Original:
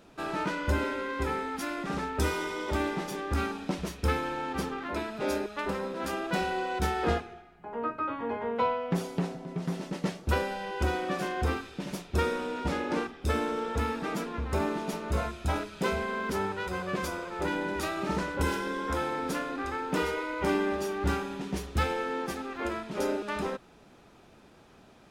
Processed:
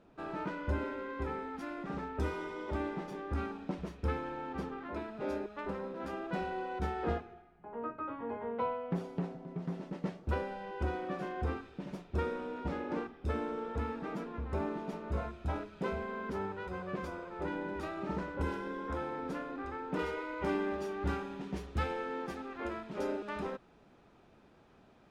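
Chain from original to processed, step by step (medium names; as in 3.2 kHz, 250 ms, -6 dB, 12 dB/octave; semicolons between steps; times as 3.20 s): low-pass 1.3 kHz 6 dB/octave, from 19.99 s 2.6 kHz; trim -5.5 dB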